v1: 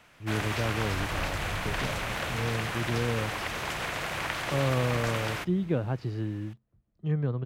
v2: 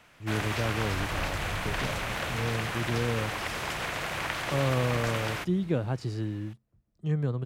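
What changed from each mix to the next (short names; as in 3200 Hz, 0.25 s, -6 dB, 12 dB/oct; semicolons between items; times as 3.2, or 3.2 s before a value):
speech: remove LPF 3300 Hz 12 dB/oct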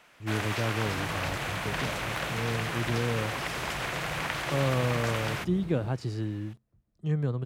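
first sound: add HPF 270 Hz; second sound +8.0 dB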